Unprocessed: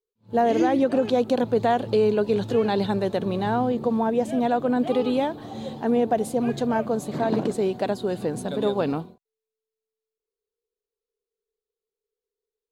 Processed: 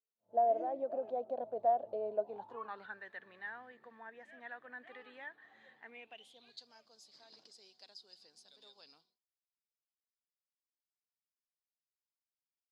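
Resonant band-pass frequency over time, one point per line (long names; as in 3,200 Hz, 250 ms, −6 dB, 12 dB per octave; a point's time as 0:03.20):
resonant band-pass, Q 13
0:02.18 650 Hz
0:03.05 1,800 Hz
0:05.75 1,800 Hz
0:06.68 5,000 Hz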